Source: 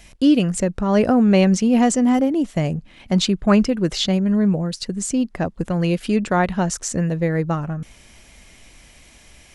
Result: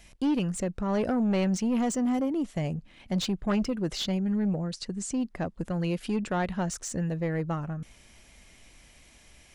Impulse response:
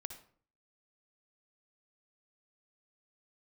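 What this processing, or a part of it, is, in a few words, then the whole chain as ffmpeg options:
saturation between pre-emphasis and de-emphasis: -filter_complex "[0:a]highshelf=frequency=4100:gain=10,asoftclip=type=tanh:threshold=-13.5dB,highshelf=frequency=4100:gain=-10,asettb=1/sr,asplit=3[link_01][link_02][link_03];[link_01]atrim=end=4.504[link_04];[link_02]atrim=start=4.5:end=5.2,asetpts=PTS-STARTPTS,afade=type=in:duration=0.004:curve=qsin,afade=type=out:start_time=0.696:duration=0.004:curve=qsin,lowpass=frequency=9700:width=0.5412,lowpass=frequency=9700:width=1.3066[link_05];[link_03]atrim=start=5.196[link_06];[link_04][link_05]acrossfade=duration=0.004:curve1=hsin:curve2=qsin[link_07];[link_07][link_06]acrossfade=duration=0.004:curve1=qsin:curve2=hsin,volume=-7.5dB"

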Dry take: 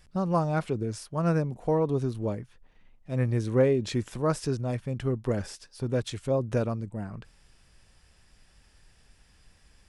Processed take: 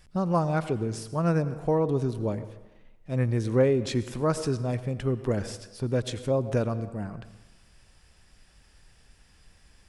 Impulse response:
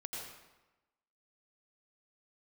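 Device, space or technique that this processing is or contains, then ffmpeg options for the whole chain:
ducked reverb: -filter_complex "[0:a]asplit=3[link_01][link_02][link_03];[1:a]atrim=start_sample=2205[link_04];[link_02][link_04]afir=irnorm=-1:irlink=0[link_05];[link_03]apad=whole_len=436019[link_06];[link_05][link_06]sidechaincompress=threshold=-29dB:ratio=8:attack=41:release=101,volume=-9dB[link_07];[link_01][link_07]amix=inputs=2:normalize=0"

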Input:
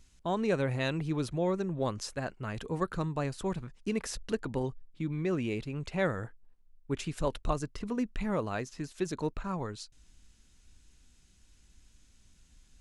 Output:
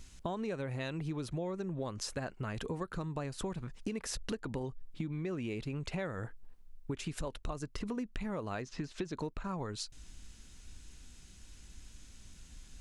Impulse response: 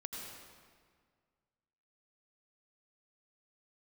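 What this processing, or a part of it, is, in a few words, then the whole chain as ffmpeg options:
serial compression, leveller first: -filter_complex "[0:a]acompressor=threshold=-40dB:ratio=1.5,acompressor=threshold=-43dB:ratio=6,asettb=1/sr,asplit=3[link_01][link_02][link_03];[link_01]atrim=end=8.624[link_04];[link_02]atrim=start=8.62:end=9.15,asetpts=PTS-STARTPTS,afade=type=in:duration=0.004:curve=qsin,afade=type=out:start_time=0.526:duration=0.004:curve=qsin,lowpass=5100[link_05];[link_03]atrim=start=9.146[link_06];[link_04][link_05]acrossfade=duration=0.004:curve1=hsin:curve2=qsin[link_07];[link_07][link_06]acrossfade=duration=0.004:curve1=qsin:curve2=hsin,volume=8dB"

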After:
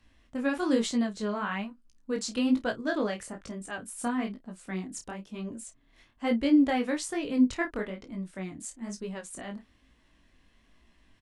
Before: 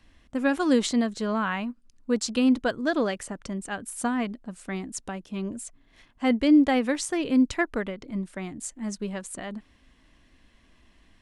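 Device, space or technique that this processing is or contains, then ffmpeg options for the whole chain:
double-tracked vocal: -filter_complex "[0:a]asplit=2[link_01][link_02];[link_02]adelay=31,volume=-13dB[link_03];[link_01][link_03]amix=inputs=2:normalize=0,flanger=delay=17:depth=7.9:speed=1.1,volume=-1.5dB"

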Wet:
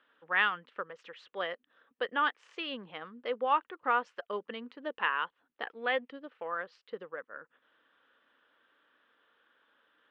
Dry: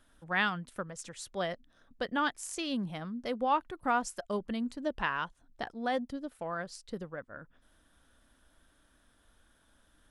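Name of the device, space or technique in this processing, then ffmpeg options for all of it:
phone earpiece: -filter_complex "[0:a]asettb=1/sr,asplit=3[link_01][link_02][link_03];[link_01]atrim=end=5.664[link_04];[link_02]atrim=start=5.66:end=6.1,asetpts=PTS-STARTPTS,afade=type=in:duration=0.004:curve=qsin,afade=type=out:start_time=0.436:duration=0.004:curve=qsin,equalizer=frequency=2400:width=1.7:gain=10[link_05];[link_03]atrim=start=6.096[link_06];[link_04][link_05]acrossfade=duration=0.004:curve1=hsin:curve2=qsin[link_07];[link_07][link_06]acrossfade=duration=0.004:curve1=qsin:curve2=hsin,highpass=460,equalizer=frequency=470:width_type=q:width=4:gain=7,equalizer=frequency=670:width_type=q:width=4:gain=-7,equalizer=frequency=1200:width_type=q:width=4:gain=4,equalizer=frequency=1800:width_type=q:width=4:gain=3,equalizer=frequency=2900:width_type=q:width=4:gain=5,lowpass=frequency=3200:width=0.5412,lowpass=frequency=3200:width=1.3066"

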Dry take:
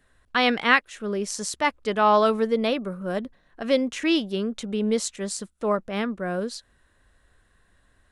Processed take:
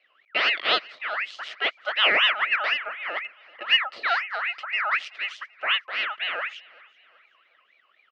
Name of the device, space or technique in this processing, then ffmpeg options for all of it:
voice changer toy: -filter_complex "[0:a]aeval=exprs='val(0)*sin(2*PI*1700*n/s+1700*0.4/4*sin(2*PI*4*n/s))':channel_layout=same,highpass=410,equalizer=frequency=620:width_type=q:width=4:gain=6,equalizer=frequency=910:width_type=q:width=4:gain=-6,equalizer=frequency=1300:width_type=q:width=4:gain=7,equalizer=frequency=2000:width_type=q:width=4:gain=5,equalizer=frequency=2900:width_type=q:width=4:gain=10,lowpass=frequency=4200:width=0.5412,lowpass=frequency=4200:width=1.3066,asettb=1/sr,asplit=3[link_01][link_02][link_03];[link_01]atrim=end=1.534[link_04];[link_02]atrim=start=1.53:end=2.12,asetpts=PTS-STARTPTS,afade=type=in:duration=0.004:curve=qsin,afade=type=out:start_time=0.586:duration=0.004:curve=qsin,highpass=frequency=280:width=0.5412,highpass=frequency=280:width=1.3066[link_05];[link_03]atrim=start=2.116[link_06];[link_04][link_05]acrossfade=duration=0.004:curve1=hsin:curve2=qsin[link_07];[link_07][link_06]acrossfade=duration=0.004:curve1=qsin:curve2=hsin,asettb=1/sr,asplit=3[link_08][link_09][link_10];[link_08]atrim=end=3.104[link_11];[link_09]atrim=start=3.1:end=4.05,asetpts=PTS-STARTPTS,afade=type=in:duration=0.004:curve=qsin,afade=type=out:start_time=0.946:duration=0.004:curve=qsin,bandreject=frequency=1500:width=5.7[link_12];[link_10]atrim=start=4.046[link_13];[link_11][link_12]acrossfade=duration=0.004:curve1=hsin:curve2=qsin[link_14];[link_14][link_13]acrossfade=duration=0.004:curve1=qsin:curve2=hsin,aecho=1:1:383|766|1149:0.0708|0.0297|0.0125,volume=-3.5dB"

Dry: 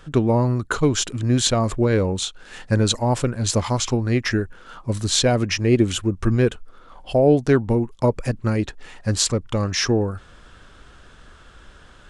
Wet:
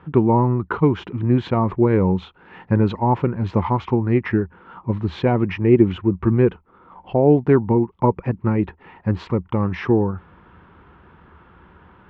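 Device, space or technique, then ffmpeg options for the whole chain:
bass cabinet: -af "highpass=78,equalizer=frequency=79:width_type=q:width=4:gain=8,equalizer=frequency=180:width_type=q:width=4:gain=9,equalizer=frequency=360:width_type=q:width=4:gain=5,equalizer=frequency=610:width_type=q:width=4:gain=-6,equalizer=frequency=920:width_type=q:width=4:gain=9,equalizer=frequency=1600:width_type=q:width=4:gain=-5,lowpass=frequency=2300:width=0.5412,lowpass=frequency=2300:width=1.3066"

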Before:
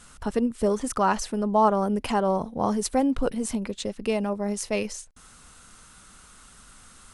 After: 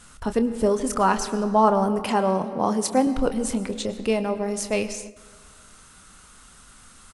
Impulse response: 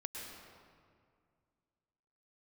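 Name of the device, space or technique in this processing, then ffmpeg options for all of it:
keyed gated reverb: -filter_complex "[0:a]asettb=1/sr,asplit=3[link_01][link_02][link_03];[link_01]atrim=end=2.004[link_04];[link_02]atrim=start=2:end=3.07,asetpts=PTS-STARTPTS,afade=type=in:duration=0.004:curve=qsin,afade=type=out:start_time=1.066:duration=0.004:curve=qsin,highpass=150[link_05];[link_03]atrim=start=3.066[link_06];[link_04][link_05]acrossfade=duration=0.004:curve1=hsin:curve2=qsin[link_07];[link_07][link_06]acrossfade=duration=0.004:curve1=qsin:curve2=hsin,asplit=3[link_08][link_09][link_10];[1:a]atrim=start_sample=2205[link_11];[link_09][link_11]afir=irnorm=-1:irlink=0[link_12];[link_10]apad=whole_len=314462[link_13];[link_12][link_13]sidechaingate=range=-9dB:threshold=-45dB:ratio=16:detection=peak,volume=-6.5dB[link_14];[link_08][link_14]amix=inputs=2:normalize=0,asplit=2[link_15][link_16];[link_16]adelay=27,volume=-11.5dB[link_17];[link_15][link_17]amix=inputs=2:normalize=0"

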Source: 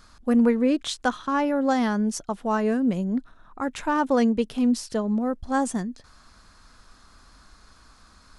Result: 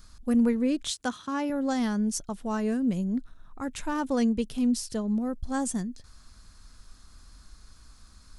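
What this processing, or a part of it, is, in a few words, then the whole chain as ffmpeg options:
smiley-face EQ: -filter_complex "[0:a]asettb=1/sr,asplit=3[link_01][link_02][link_03];[link_01]atrim=end=0.904[link_04];[link_02]atrim=start=0.9:end=1.5,asetpts=PTS-STARTPTS,afade=type=in:duration=0.004:curve=qsin,afade=type=out:start_time=0.596:duration=0.004:curve=qsin,highpass=110[link_05];[link_03]atrim=start=1.496[link_06];[link_04][link_05]acrossfade=duration=0.004:curve1=hsin:curve2=qsin[link_07];[link_07][link_06]acrossfade=duration=0.004:curve1=qsin:curve2=hsin,lowshelf=frequency=130:gain=8.5,equalizer=frequency=900:width_type=o:width=2.9:gain=-5.5,highshelf=frequency=5900:gain=8,volume=-3.5dB"

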